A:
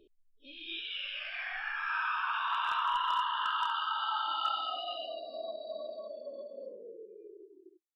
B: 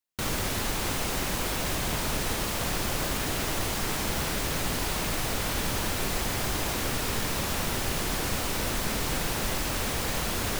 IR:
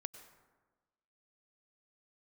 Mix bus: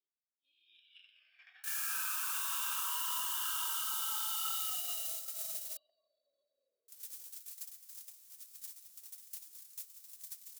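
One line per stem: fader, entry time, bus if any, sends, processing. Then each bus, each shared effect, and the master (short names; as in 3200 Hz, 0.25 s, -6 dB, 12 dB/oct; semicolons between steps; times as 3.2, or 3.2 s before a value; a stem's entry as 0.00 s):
+2.5 dB, 0.00 s, no send, echo send -16 dB, dry
-14.5 dB, 1.45 s, muted 5.77–6.88, no send, no echo send, tone controls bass +8 dB, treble +10 dB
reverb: off
echo: echo 0.809 s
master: gate -33 dBFS, range -22 dB; differentiator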